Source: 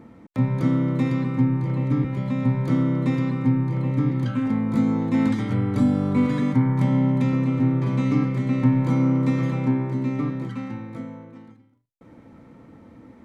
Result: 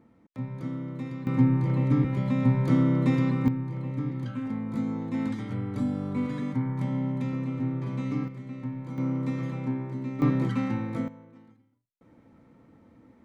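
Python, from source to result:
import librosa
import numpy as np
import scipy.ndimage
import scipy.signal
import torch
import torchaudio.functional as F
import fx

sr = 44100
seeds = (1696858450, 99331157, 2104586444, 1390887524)

y = fx.gain(x, sr, db=fx.steps((0.0, -13.0), (1.27, -1.0), (3.48, -9.0), (8.28, -16.0), (8.98, -8.5), (10.22, 3.5), (11.08, -9.0)))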